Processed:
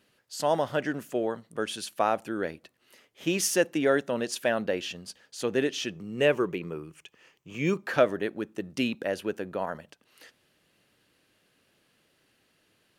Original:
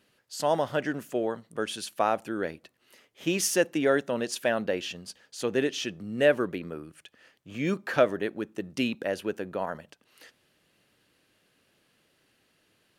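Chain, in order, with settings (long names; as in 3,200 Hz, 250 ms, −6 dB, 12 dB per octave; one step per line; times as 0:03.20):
0:05.95–0:07.83: EQ curve with evenly spaced ripples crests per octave 0.74, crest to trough 7 dB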